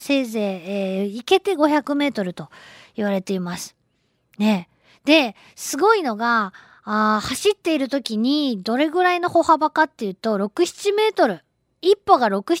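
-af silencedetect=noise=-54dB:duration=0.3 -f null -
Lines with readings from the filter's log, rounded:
silence_start: 3.72
silence_end: 4.33 | silence_duration: 0.62
silence_start: 11.42
silence_end: 11.83 | silence_duration: 0.41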